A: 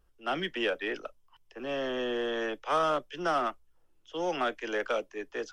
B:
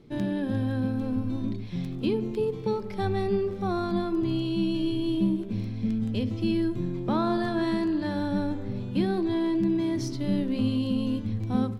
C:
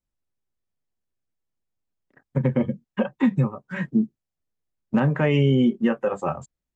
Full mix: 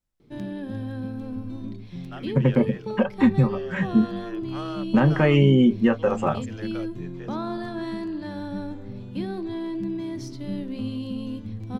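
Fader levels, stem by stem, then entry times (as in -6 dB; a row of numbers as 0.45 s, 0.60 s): -10.0 dB, -4.5 dB, +2.0 dB; 1.85 s, 0.20 s, 0.00 s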